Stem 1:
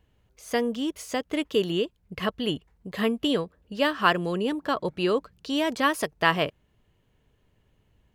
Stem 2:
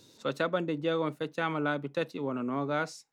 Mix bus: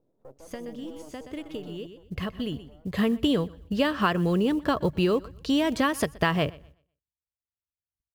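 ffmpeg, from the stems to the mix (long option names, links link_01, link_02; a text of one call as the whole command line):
ffmpeg -i stem1.wav -i stem2.wav -filter_complex "[0:a]agate=range=-55dB:threshold=-56dB:ratio=16:detection=peak,equalizer=frequency=71:width=0.46:gain=15,acompressor=threshold=-22dB:ratio=6,volume=2.5dB,asplit=2[link_01][link_02];[link_02]volume=-22.5dB[link_03];[1:a]alimiter=level_in=1dB:limit=-24dB:level=0:latency=1:release=182,volume=-1dB,aeval=exprs='max(val(0),0)':channel_layout=same,lowpass=frequency=610:width_type=q:width=1.5,volume=-8.5dB,afade=type=out:start_time=1.58:duration=0.39:silence=0.298538,asplit=2[link_04][link_05];[link_05]apad=whole_len=359153[link_06];[link_01][link_06]sidechaincompress=threshold=-56dB:ratio=8:attack=26:release=604[link_07];[link_03]aecho=0:1:124|248|372|496:1|0.25|0.0625|0.0156[link_08];[link_07][link_04][link_08]amix=inputs=3:normalize=0,acrusher=bits=9:mode=log:mix=0:aa=0.000001" out.wav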